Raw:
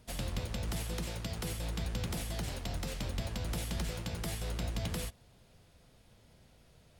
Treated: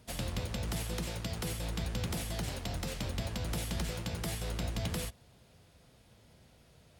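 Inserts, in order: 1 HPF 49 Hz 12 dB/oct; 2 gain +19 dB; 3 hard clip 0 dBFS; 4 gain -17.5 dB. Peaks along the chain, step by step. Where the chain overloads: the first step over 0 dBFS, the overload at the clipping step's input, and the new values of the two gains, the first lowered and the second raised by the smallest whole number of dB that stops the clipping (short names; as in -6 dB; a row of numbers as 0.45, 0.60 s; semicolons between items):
-24.0, -5.0, -5.0, -22.5 dBFS; no overload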